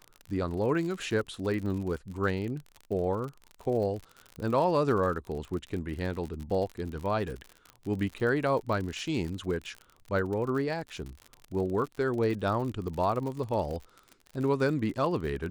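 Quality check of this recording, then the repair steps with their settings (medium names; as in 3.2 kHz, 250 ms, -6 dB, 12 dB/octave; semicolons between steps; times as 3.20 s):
crackle 60 per s -35 dBFS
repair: de-click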